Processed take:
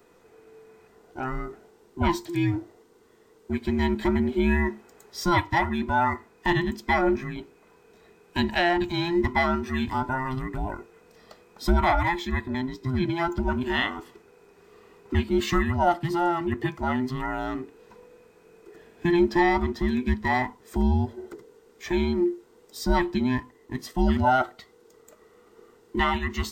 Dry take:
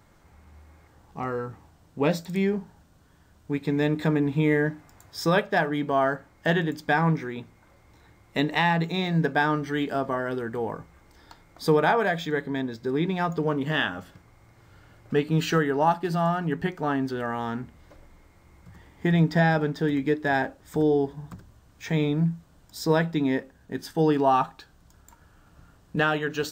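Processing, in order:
frequency inversion band by band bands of 500 Hz

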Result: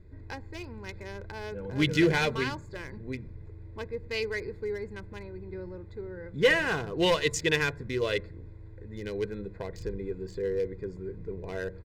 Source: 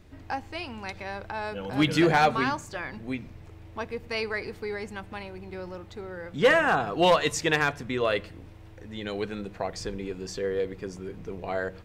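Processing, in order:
adaptive Wiener filter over 15 samples
flat-topped bell 870 Hz −9.5 dB
comb filter 2 ms, depth 51%

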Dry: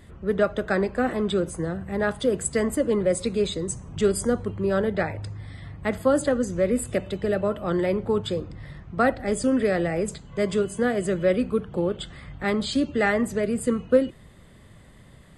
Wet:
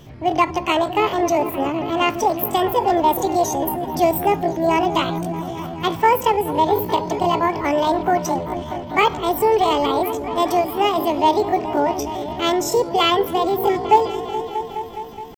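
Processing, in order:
echo whose low-pass opens from repeat to repeat 211 ms, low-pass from 200 Hz, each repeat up 1 octave, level −6 dB
pitch shifter +9 semitones
level +5 dB

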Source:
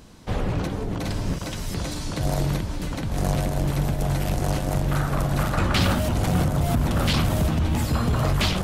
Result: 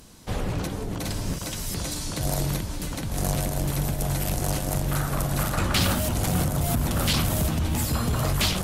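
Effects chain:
parametric band 13,000 Hz +12 dB 1.8 octaves
level −3 dB

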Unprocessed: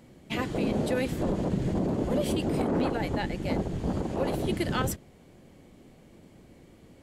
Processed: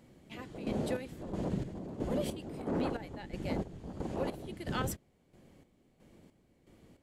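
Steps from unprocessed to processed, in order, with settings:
square-wave tremolo 1.5 Hz, depth 65%, duty 45%
level −6 dB

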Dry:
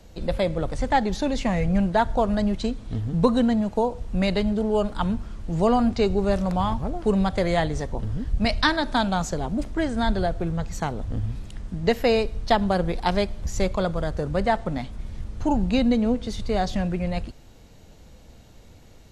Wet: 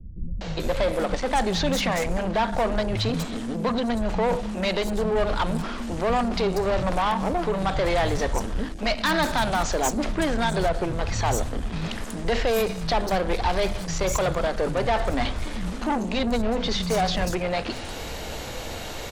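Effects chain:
brickwall limiter −16 dBFS, peak gain reduction 10.5 dB
soft clipping −23.5 dBFS, distortion −13 dB
reversed playback
downward compressor, threshold −36 dBFS, peak gain reduction 10 dB
reversed playback
low-shelf EQ 84 Hz +10 dB
mains-hum notches 50/100/150/200/250 Hz
mid-hump overdrive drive 22 dB, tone 4,500 Hz, clips at −23 dBFS
high-shelf EQ 7,000 Hz +6.5 dB
three-band delay without the direct sound lows, mids, highs 410/600 ms, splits 190/6,000 Hz
level +8.5 dB

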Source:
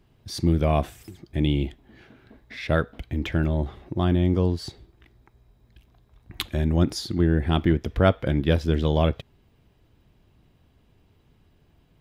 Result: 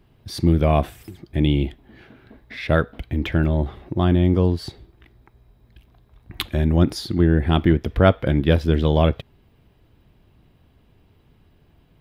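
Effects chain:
parametric band 6,700 Hz −6.5 dB 0.85 octaves
level +4 dB

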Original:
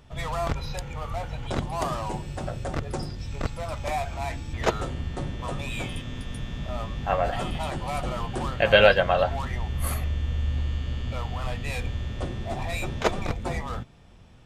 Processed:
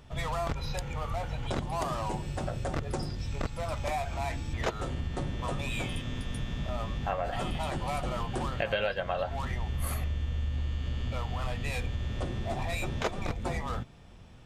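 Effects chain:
downward compressor 5 to 1, threshold −28 dBFS, peak gain reduction 15.5 dB

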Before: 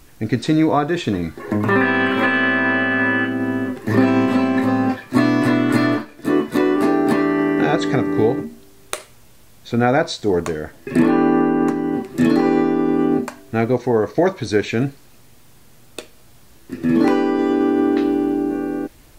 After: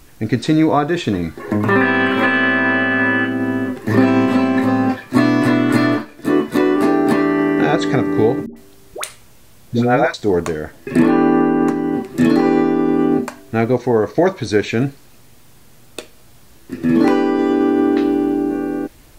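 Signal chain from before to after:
0:08.46–0:10.14: all-pass dispersion highs, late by 103 ms, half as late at 650 Hz
level +2 dB

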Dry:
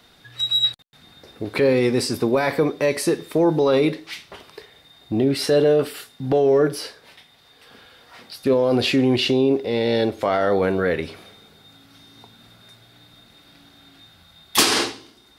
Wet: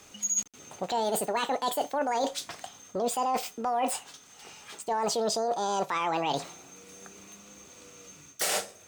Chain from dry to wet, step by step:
reversed playback
downward compressor 12 to 1, threshold −25 dBFS, peak gain reduction 14.5 dB
reversed playback
wrong playback speed 45 rpm record played at 78 rpm

